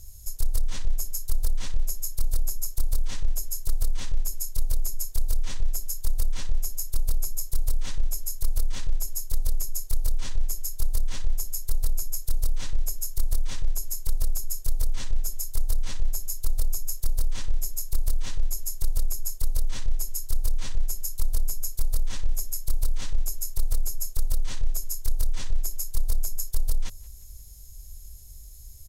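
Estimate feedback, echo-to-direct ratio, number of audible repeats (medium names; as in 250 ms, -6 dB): 45%, -23.0 dB, 2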